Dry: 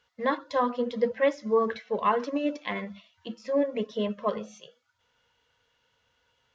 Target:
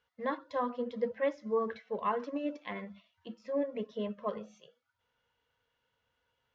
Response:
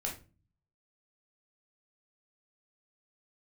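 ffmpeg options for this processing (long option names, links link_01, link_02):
-af "highshelf=frequency=4000:gain=-10,volume=-7dB"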